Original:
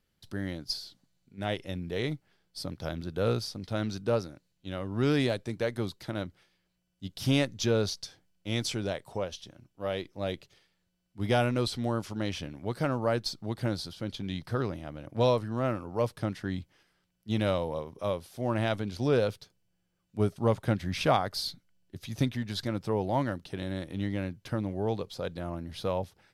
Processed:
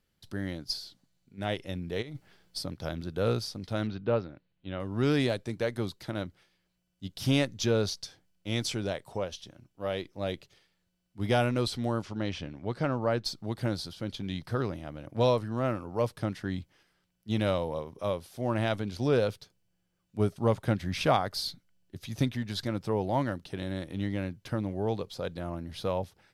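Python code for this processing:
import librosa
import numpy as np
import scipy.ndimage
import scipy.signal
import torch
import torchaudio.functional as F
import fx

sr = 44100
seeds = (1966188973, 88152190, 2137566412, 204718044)

y = fx.over_compress(x, sr, threshold_db=-41.0, ratio=-1.0, at=(2.01, 2.6), fade=0.02)
y = fx.lowpass(y, sr, hz=3400.0, slope=24, at=(3.87, 4.8))
y = fx.air_absorb(y, sr, metres=81.0, at=(12.02, 13.25))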